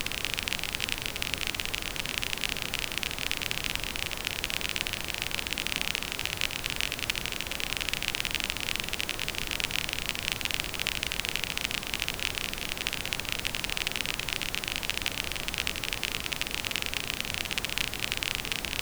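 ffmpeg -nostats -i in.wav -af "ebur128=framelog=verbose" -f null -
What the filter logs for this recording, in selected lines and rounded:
Integrated loudness:
  I:         -30.3 LUFS
  Threshold: -40.3 LUFS
Loudness range:
  LRA:         0.6 LU
  Threshold: -50.3 LUFS
  LRA low:   -30.5 LUFS
  LRA high:  -29.9 LUFS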